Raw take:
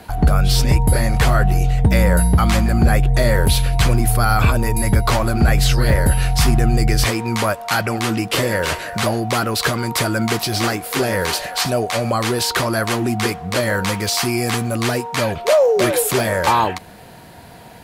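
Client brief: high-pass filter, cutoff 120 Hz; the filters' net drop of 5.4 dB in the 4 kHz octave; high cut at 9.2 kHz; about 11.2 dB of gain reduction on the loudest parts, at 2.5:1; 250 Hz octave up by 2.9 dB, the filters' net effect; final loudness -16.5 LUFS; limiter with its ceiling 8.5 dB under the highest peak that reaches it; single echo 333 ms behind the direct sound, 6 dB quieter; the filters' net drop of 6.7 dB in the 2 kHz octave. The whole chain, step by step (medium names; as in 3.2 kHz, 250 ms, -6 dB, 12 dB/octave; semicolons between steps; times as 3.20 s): high-pass 120 Hz; low-pass 9.2 kHz; peaking EQ 250 Hz +4.5 dB; peaking EQ 2 kHz -8 dB; peaking EQ 4 kHz -4.5 dB; compression 2.5:1, threshold -30 dBFS; peak limiter -21.5 dBFS; delay 333 ms -6 dB; trim +13.5 dB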